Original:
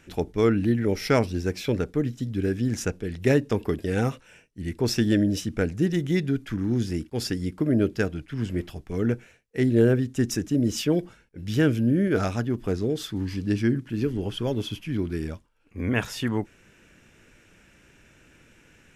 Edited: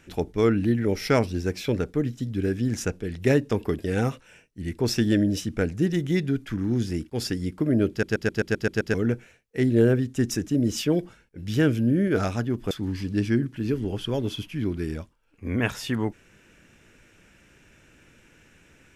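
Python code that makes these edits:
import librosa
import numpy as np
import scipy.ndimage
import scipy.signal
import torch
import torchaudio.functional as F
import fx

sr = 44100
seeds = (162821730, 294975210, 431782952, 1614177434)

y = fx.edit(x, sr, fx.stutter_over(start_s=7.9, slice_s=0.13, count=8),
    fx.cut(start_s=12.71, length_s=0.33), tone=tone)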